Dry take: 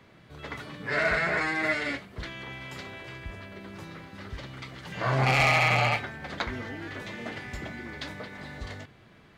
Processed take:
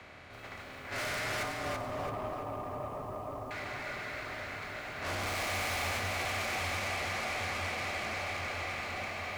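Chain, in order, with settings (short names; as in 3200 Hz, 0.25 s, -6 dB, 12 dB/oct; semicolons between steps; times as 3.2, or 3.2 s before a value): per-bin compression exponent 0.4; low shelf 84 Hz -8.5 dB; gate -20 dBFS, range -20 dB; diffused feedback echo 0.922 s, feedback 62%, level -7.5 dB; frequency shift -36 Hz; 1.43–3.51 brick-wall FIR low-pass 1300 Hz; soft clip -35.5 dBFS, distortion -1 dB; lo-fi delay 0.333 s, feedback 35%, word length 10-bit, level -4 dB; gain +1 dB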